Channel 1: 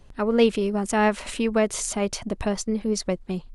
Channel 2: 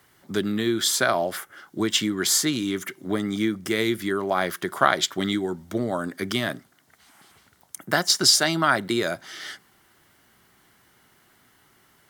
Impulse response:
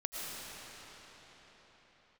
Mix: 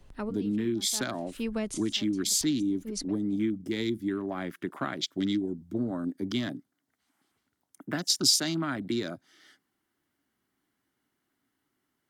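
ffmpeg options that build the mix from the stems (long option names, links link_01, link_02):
-filter_complex "[0:a]volume=-4.5dB[link_01];[1:a]afwtdn=0.0251,equalizer=frequency=280:width=2.5:gain=11.5,volume=-5dB,asplit=2[link_02][link_03];[link_03]apad=whole_len=156412[link_04];[link_01][link_04]sidechaincompress=threshold=-43dB:ratio=6:attack=9:release=114[link_05];[link_05][link_02]amix=inputs=2:normalize=0,acrossover=split=240|3000[link_06][link_07][link_08];[link_07]acompressor=threshold=-41dB:ratio=2[link_09];[link_06][link_09][link_08]amix=inputs=3:normalize=0"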